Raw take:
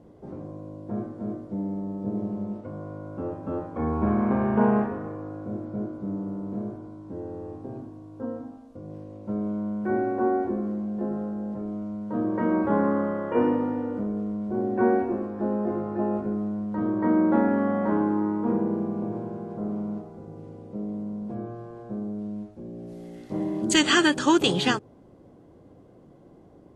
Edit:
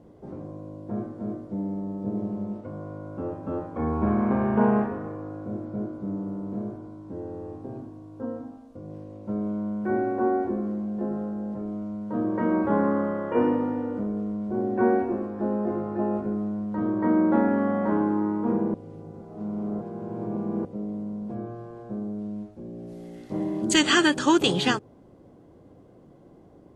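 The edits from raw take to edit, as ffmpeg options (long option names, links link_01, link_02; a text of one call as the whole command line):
ffmpeg -i in.wav -filter_complex "[0:a]asplit=3[link_01][link_02][link_03];[link_01]atrim=end=18.742[link_04];[link_02]atrim=start=18.738:end=20.652,asetpts=PTS-STARTPTS,areverse[link_05];[link_03]atrim=start=20.648[link_06];[link_04][link_05]acrossfade=duration=0.004:curve1=hsin:curve2=hsin[link_07];[link_07][link_06]acrossfade=duration=0.004:curve1=hsin:curve2=hsin" out.wav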